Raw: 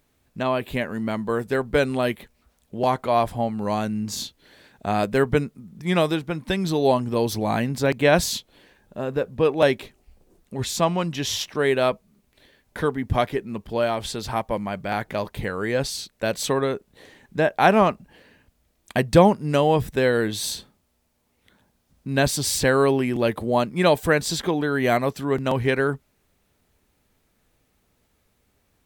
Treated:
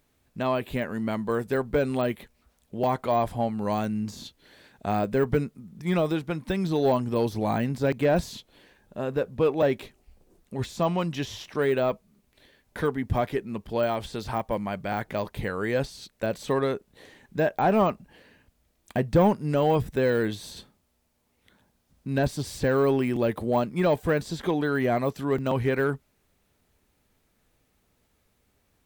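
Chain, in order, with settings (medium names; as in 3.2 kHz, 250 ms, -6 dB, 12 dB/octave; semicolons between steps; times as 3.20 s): de-esser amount 90%; in parallel at -3.5 dB: hard clipper -16 dBFS, distortion -13 dB; on the sum: trim -6.5 dB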